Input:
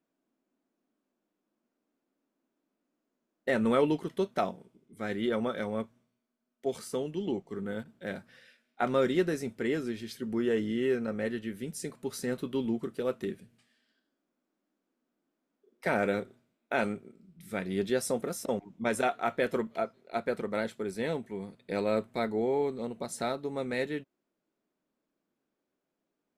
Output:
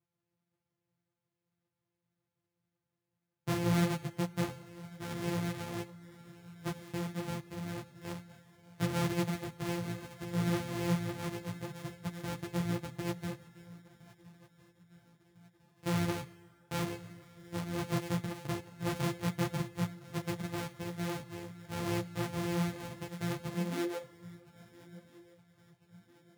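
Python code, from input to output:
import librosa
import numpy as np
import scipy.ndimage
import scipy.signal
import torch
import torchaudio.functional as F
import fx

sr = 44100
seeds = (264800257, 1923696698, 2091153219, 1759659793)

p1 = np.r_[np.sort(x[:len(x) // 256 * 256].reshape(-1, 256), axis=1).ravel(), x[len(x) // 256 * 256:]]
p2 = fx.filter_sweep_highpass(p1, sr, from_hz=120.0, to_hz=3500.0, start_s=23.46, end_s=24.75, q=6.2)
p3 = p2 + fx.echo_swing(p2, sr, ms=1352, ratio=3, feedback_pct=44, wet_db=-21.0, dry=0)
p4 = fx.rev_plate(p3, sr, seeds[0], rt60_s=2.2, hf_ratio=0.8, predelay_ms=0, drr_db=18.0)
p5 = fx.ensemble(p4, sr)
y = F.gain(torch.from_numpy(p5), -3.5).numpy()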